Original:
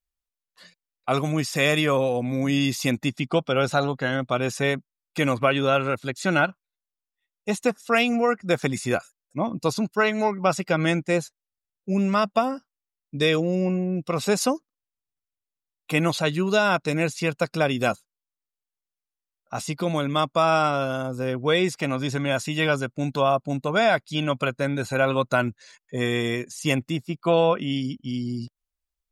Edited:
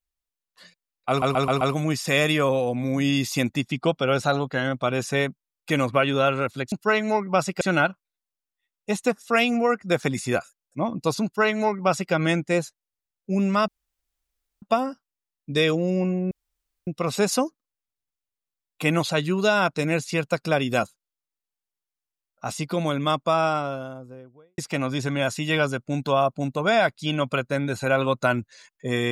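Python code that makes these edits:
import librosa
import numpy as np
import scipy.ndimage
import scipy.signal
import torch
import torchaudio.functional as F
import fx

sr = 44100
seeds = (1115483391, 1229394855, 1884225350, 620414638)

y = fx.studio_fade_out(x, sr, start_s=20.13, length_s=1.54)
y = fx.edit(y, sr, fx.stutter(start_s=1.09, slice_s=0.13, count=5),
    fx.duplicate(start_s=9.83, length_s=0.89, to_s=6.2),
    fx.insert_room_tone(at_s=12.27, length_s=0.94),
    fx.insert_room_tone(at_s=13.96, length_s=0.56), tone=tone)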